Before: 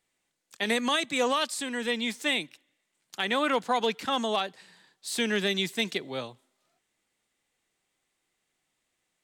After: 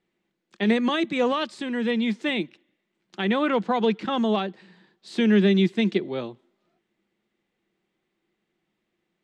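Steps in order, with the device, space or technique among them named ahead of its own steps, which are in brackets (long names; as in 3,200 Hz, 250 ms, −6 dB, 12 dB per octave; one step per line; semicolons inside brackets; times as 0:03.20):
inside a cardboard box (low-pass filter 3,500 Hz 12 dB per octave; hollow resonant body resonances 200/340 Hz, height 15 dB, ringing for 55 ms)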